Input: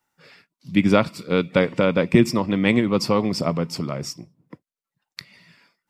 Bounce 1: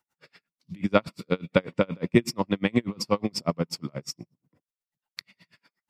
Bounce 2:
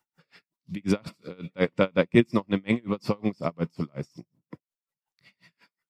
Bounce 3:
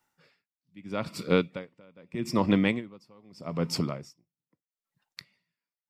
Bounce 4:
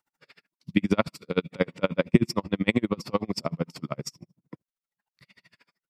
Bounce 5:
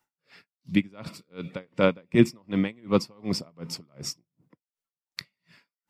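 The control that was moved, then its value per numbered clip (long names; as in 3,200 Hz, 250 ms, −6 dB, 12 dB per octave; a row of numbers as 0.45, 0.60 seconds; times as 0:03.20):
tremolo with a sine in dB, speed: 8.3, 5.5, 0.8, 13, 2.7 Hertz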